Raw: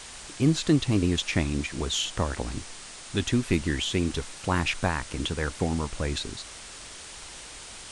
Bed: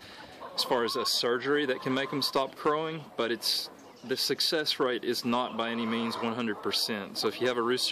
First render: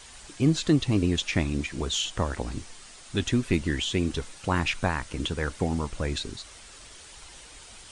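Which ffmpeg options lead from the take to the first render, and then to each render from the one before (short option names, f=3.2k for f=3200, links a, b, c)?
-af "afftdn=nr=7:nf=-43"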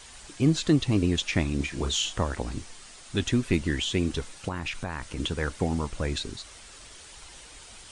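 -filter_complex "[0:a]asettb=1/sr,asplit=3[a][b][c];[a]atrim=end=1.574[d];[b]atrim=start=1.57:end=2.19,asetpts=PTS-STARTPTS,afade=t=in:d=0.004:c=qsin,afade=t=out:st=0.616:d=0.004:c=qsin,asplit=2[e][f];[f]adelay=29,volume=-6.5dB[g];[e][g]amix=inputs=2:normalize=0,atrim=end_sample=27342[h];[c]atrim=start=2.186[i];[d][h]acrossfade=d=0.004:c1=hsin:c2=qsin[j];[j][i]acrossfade=d=0.004:c1=qsin:c2=hsin,asettb=1/sr,asplit=3[k][l][m];[k]atrim=end=4.484[n];[l]atrim=start=4.48:end=5.18,asetpts=PTS-STARTPTS,afade=t=in:d=0.004:c=qsin,afade=t=out:st=0.696:d=0.004:c=qsin,acompressor=threshold=-28dB:ratio=5:attack=3.2:release=140:knee=1:detection=peak[o];[m]atrim=start=5.176[p];[n][o]acrossfade=d=0.004:c1=hsin:c2=qsin[q];[q][p]acrossfade=d=0.004:c1=qsin:c2=hsin"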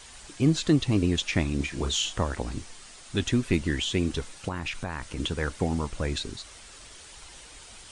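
-af anull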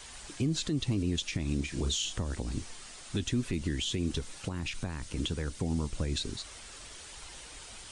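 -filter_complex "[0:a]alimiter=limit=-20.5dB:level=0:latency=1:release=113,acrossover=split=390|3000[a][b][c];[b]acompressor=threshold=-45dB:ratio=4[d];[a][d][c]amix=inputs=3:normalize=0"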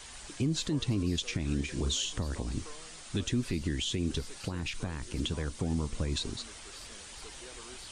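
-filter_complex "[1:a]volume=-23.5dB[a];[0:a][a]amix=inputs=2:normalize=0"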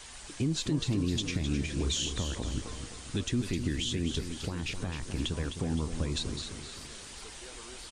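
-af "aecho=1:1:259|518|777|1036|1295:0.376|0.177|0.083|0.039|0.0183"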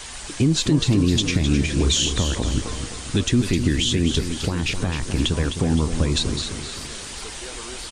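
-af "volume=11.5dB"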